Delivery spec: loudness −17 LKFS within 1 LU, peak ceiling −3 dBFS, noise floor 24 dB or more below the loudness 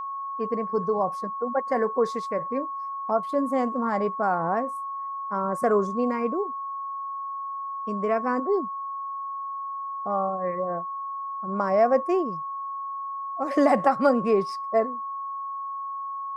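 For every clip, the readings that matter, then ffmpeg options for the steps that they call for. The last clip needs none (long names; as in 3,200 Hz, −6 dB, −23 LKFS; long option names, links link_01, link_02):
interfering tone 1,100 Hz; level of the tone −30 dBFS; integrated loudness −27.0 LKFS; sample peak −8.0 dBFS; target loudness −17.0 LKFS
→ -af "bandreject=frequency=1100:width=30"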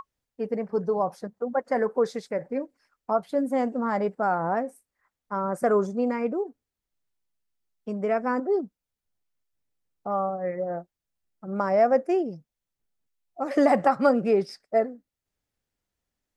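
interfering tone none found; integrated loudness −26.5 LKFS; sample peak −9.0 dBFS; target loudness −17.0 LKFS
→ -af "volume=9.5dB,alimiter=limit=-3dB:level=0:latency=1"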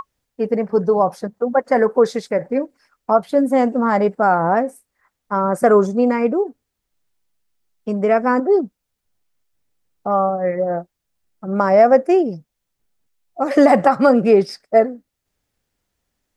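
integrated loudness −17.5 LKFS; sample peak −3.0 dBFS; background noise floor −78 dBFS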